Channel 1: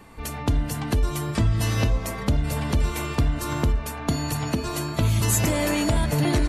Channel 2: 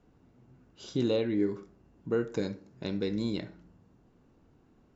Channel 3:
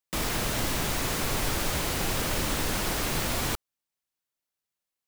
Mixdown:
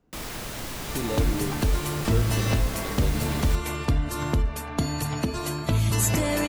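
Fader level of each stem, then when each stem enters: −1.5, −3.0, −6.0 decibels; 0.70, 0.00, 0.00 seconds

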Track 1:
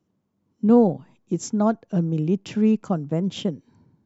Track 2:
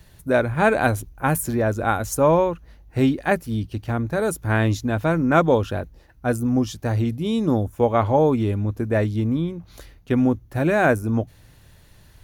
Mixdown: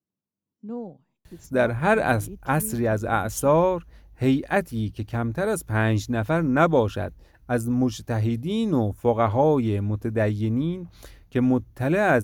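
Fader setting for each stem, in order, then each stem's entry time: −18.5, −2.0 decibels; 0.00, 1.25 seconds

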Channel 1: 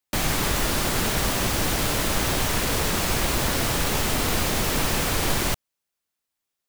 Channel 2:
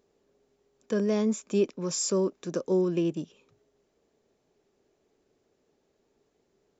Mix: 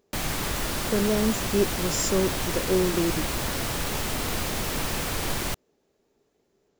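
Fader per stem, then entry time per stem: −5.0, +1.5 decibels; 0.00, 0.00 seconds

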